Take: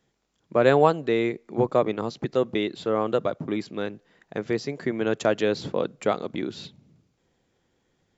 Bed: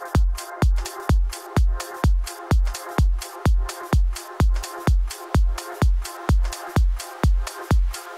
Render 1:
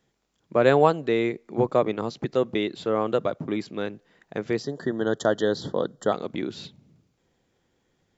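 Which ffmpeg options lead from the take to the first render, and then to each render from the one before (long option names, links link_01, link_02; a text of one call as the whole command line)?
ffmpeg -i in.wav -filter_complex "[0:a]asplit=3[link_01][link_02][link_03];[link_01]afade=type=out:start_time=4.62:duration=0.02[link_04];[link_02]asuperstop=centerf=2400:order=20:qfactor=2.3,afade=type=in:start_time=4.62:duration=0.02,afade=type=out:start_time=6.12:duration=0.02[link_05];[link_03]afade=type=in:start_time=6.12:duration=0.02[link_06];[link_04][link_05][link_06]amix=inputs=3:normalize=0" out.wav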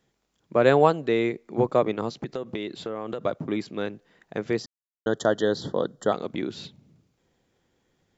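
ffmpeg -i in.wav -filter_complex "[0:a]asettb=1/sr,asplit=3[link_01][link_02][link_03];[link_01]atrim=end=2.194[link_04];[link_02]atrim=start=2.19:end=3.24,asetpts=PTS-STARTPTS,afade=type=in:duration=0.004:curve=qsin,afade=type=out:start_time=1.046:duration=0.004:curve=qsin,acompressor=threshold=-26dB:ratio=12:attack=3.2:release=140:knee=1:detection=peak[link_05];[link_03]atrim=start=3.236[link_06];[link_04][link_05]acrossfade=duration=0.004:curve1=hsin:curve2=qsin[link_07];[link_07][link_06]acrossfade=duration=0.004:curve1=qsin:curve2=hsin,asplit=3[link_08][link_09][link_10];[link_08]atrim=end=4.66,asetpts=PTS-STARTPTS,afade=type=out:start_time=4.656:duration=0.004:curve=hsin[link_11];[link_09]atrim=start=4.66:end=5.06,asetpts=PTS-STARTPTS,volume=0[link_12];[link_10]atrim=start=5.06,asetpts=PTS-STARTPTS,afade=type=in:duration=0.004:curve=hsin[link_13];[link_11][link_12][link_13]concat=n=3:v=0:a=1" out.wav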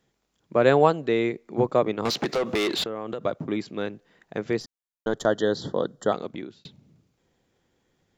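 ffmpeg -i in.wav -filter_complex "[0:a]asettb=1/sr,asplit=3[link_01][link_02][link_03];[link_01]atrim=end=2.054[link_04];[link_02]atrim=start=2.05:end=2.84,asetpts=PTS-STARTPTS,afade=type=in:duration=0.004:curve=qsin,afade=type=out:start_time=0.786:duration=0.004:curve=qsin,asplit=2[link_05][link_06];[link_06]highpass=frequency=720:poles=1,volume=27dB,asoftclip=type=tanh:threshold=-16dB[link_07];[link_05][link_07]amix=inputs=2:normalize=0,lowpass=frequency=5900:poles=1,volume=-6dB[link_08];[link_03]atrim=start=2.836[link_09];[link_04][link_08]acrossfade=duration=0.004:curve1=hsin:curve2=qsin[link_10];[link_10][link_09]acrossfade=duration=0.004:curve1=qsin:curve2=hsin,asettb=1/sr,asplit=3[link_11][link_12][link_13];[link_11]atrim=end=4.604[link_14];[link_12]atrim=start=4.6:end=5.26,asetpts=PTS-STARTPTS,afade=type=in:duration=0.004:curve=qsin,afade=type=out:start_time=0.656:duration=0.004:curve=qsin,aeval=exprs='if(lt(val(0),0),0.708*val(0),val(0))':channel_layout=same[link_15];[link_13]atrim=start=5.256[link_16];[link_14][link_15]acrossfade=duration=0.004:curve1=hsin:curve2=qsin[link_17];[link_17][link_16]acrossfade=duration=0.004:curve1=qsin:curve2=hsin,asplit=2[link_18][link_19];[link_18]atrim=end=6.65,asetpts=PTS-STARTPTS,afade=type=out:start_time=6.16:duration=0.49[link_20];[link_19]atrim=start=6.65,asetpts=PTS-STARTPTS,afade=type=in:duration=0.004:curve=hsin[link_21];[link_20][link_21]concat=n=2:v=0:a=1" out.wav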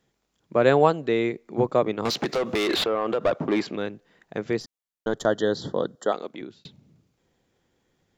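ffmpeg -i in.wav -filter_complex "[0:a]asettb=1/sr,asplit=3[link_01][link_02][link_03];[link_01]atrim=end=2.694[link_04];[link_02]atrim=start=2.69:end=3.76,asetpts=PTS-STARTPTS,afade=type=in:duration=0.004:curve=qsin,afade=type=out:start_time=1.066:duration=0.004:curve=qsin,asplit=2[link_05][link_06];[link_06]highpass=frequency=720:poles=1,volume=21dB,asoftclip=type=tanh:threshold=-12dB[link_07];[link_05][link_07]amix=inputs=2:normalize=0,lowpass=frequency=1900:poles=1,volume=-6dB[link_08];[link_03]atrim=start=3.756[link_09];[link_04][link_08]acrossfade=duration=0.004:curve1=hsin:curve2=qsin[link_10];[link_10][link_09]acrossfade=duration=0.004:curve1=qsin:curve2=hsin,asettb=1/sr,asplit=3[link_11][link_12][link_13];[link_11]atrim=end=5.954[link_14];[link_12]atrim=start=5.95:end=6.41,asetpts=PTS-STARTPTS,afade=type=in:duration=0.004:curve=qsin,afade=type=out:start_time=0.456:duration=0.004:curve=qsin,highpass=290[link_15];[link_13]atrim=start=6.406[link_16];[link_14][link_15]acrossfade=duration=0.004:curve1=hsin:curve2=qsin[link_17];[link_17][link_16]acrossfade=duration=0.004:curve1=qsin:curve2=hsin" out.wav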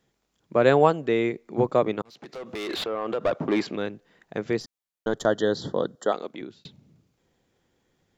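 ffmpeg -i in.wav -filter_complex "[0:a]asettb=1/sr,asplit=3[link_01][link_02][link_03];[link_01]atrim=end=0.744[link_04];[link_02]atrim=start=0.74:end=1.34,asetpts=PTS-STARTPTS,afade=type=in:duration=0.004:curve=qsin,afade=type=out:start_time=0.596:duration=0.004:curve=qsin,bandreject=frequency=4000:width=8.4[link_05];[link_03]atrim=start=1.336[link_06];[link_04][link_05]acrossfade=duration=0.004:curve1=hsin:curve2=qsin[link_07];[link_07][link_06]acrossfade=duration=0.004:curve1=qsin:curve2=hsin,asplit=2[link_08][link_09];[link_08]atrim=end=2.02,asetpts=PTS-STARTPTS,afade=type=out:start_time=2.016:duration=0.004:curve=hsin[link_10];[link_09]atrim=start=2.02,asetpts=PTS-STARTPTS,afade=type=in:duration=1.55[link_11];[link_10][link_11]concat=n=2:v=0:a=1" out.wav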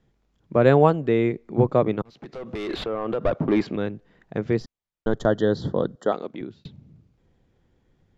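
ffmpeg -i in.wav -af "aemphasis=mode=reproduction:type=bsi" out.wav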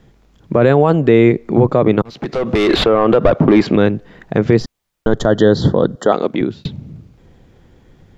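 ffmpeg -i in.wav -filter_complex "[0:a]asplit=2[link_01][link_02];[link_02]acompressor=threshold=-26dB:ratio=6,volume=0dB[link_03];[link_01][link_03]amix=inputs=2:normalize=0,alimiter=level_in=11dB:limit=-1dB:release=50:level=0:latency=1" out.wav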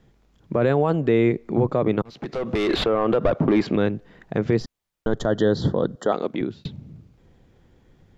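ffmpeg -i in.wav -af "volume=-8.5dB" out.wav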